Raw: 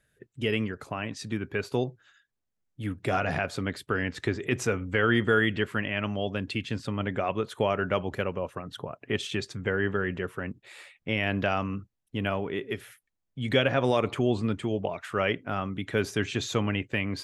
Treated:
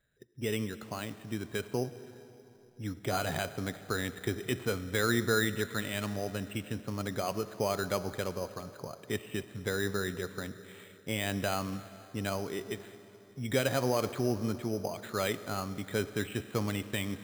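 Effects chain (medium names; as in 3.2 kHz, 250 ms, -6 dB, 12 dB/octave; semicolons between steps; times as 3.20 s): reverberation RT60 3.5 s, pre-delay 20 ms, DRR 13.5 dB; careless resampling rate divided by 8×, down filtered, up hold; trim -5 dB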